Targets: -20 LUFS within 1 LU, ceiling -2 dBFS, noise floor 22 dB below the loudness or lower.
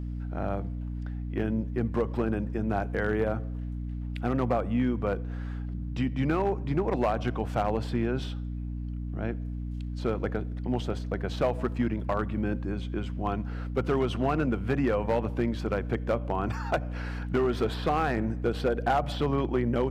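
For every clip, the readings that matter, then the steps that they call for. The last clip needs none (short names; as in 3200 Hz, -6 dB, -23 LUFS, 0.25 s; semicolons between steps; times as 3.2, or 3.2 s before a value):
clipped 0.6%; flat tops at -18.5 dBFS; hum 60 Hz; harmonics up to 300 Hz; hum level -31 dBFS; loudness -30.0 LUFS; peak -18.5 dBFS; loudness target -20.0 LUFS
-> clip repair -18.5 dBFS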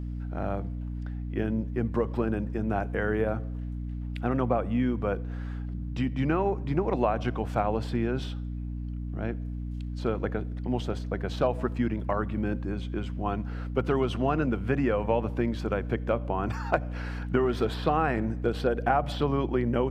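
clipped 0.0%; hum 60 Hz; harmonics up to 300 Hz; hum level -31 dBFS
-> de-hum 60 Hz, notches 5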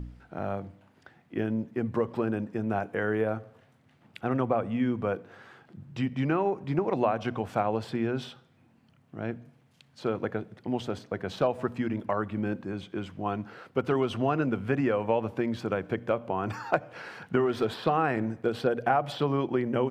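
hum none; loudness -30.0 LUFS; peak -9.5 dBFS; loudness target -20.0 LUFS
-> gain +10 dB; limiter -2 dBFS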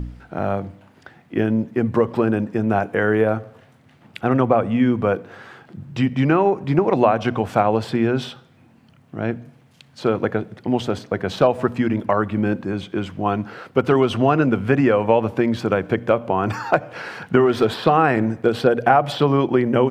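loudness -20.0 LUFS; peak -2.0 dBFS; noise floor -53 dBFS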